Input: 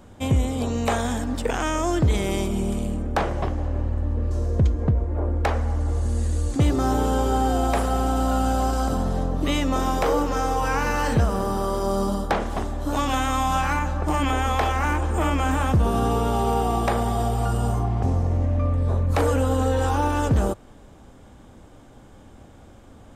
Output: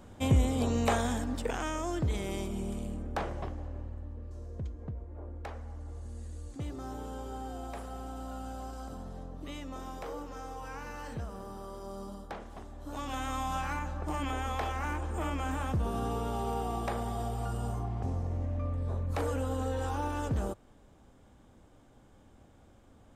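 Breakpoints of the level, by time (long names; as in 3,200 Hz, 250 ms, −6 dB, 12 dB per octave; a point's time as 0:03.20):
0:00.79 −4 dB
0:01.85 −11 dB
0:03.30 −11 dB
0:04.24 −19 dB
0:12.64 −19 dB
0:13.29 −11.5 dB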